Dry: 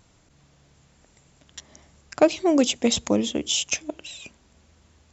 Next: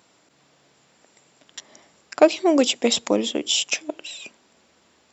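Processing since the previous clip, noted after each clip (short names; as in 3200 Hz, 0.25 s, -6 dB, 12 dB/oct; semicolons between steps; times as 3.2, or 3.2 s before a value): HPF 290 Hz 12 dB/oct; notch 6400 Hz, Q 8.4; gain +3.5 dB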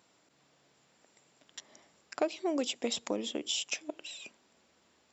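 compressor 2:1, threshold -24 dBFS, peak gain reduction 9 dB; gain -8.5 dB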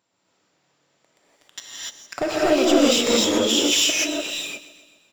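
sample leveller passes 3; feedback echo 0.129 s, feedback 59%, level -16 dB; non-linear reverb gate 0.32 s rising, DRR -7.5 dB; gain -1 dB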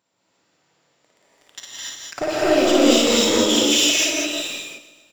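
loudspeakers at several distances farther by 19 m -3 dB, 58 m -7 dB, 72 m -4 dB; gain -1 dB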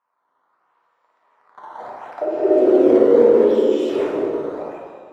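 decimation with a swept rate 10×, swing 160% 0.74 Hz; auto-wah 420–1100 Hz, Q 3.9, down, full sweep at -21 dBFS; plate-style reverb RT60 1.9 s, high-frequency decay 0.6×, DRR -1 dB; gain +5.5 dB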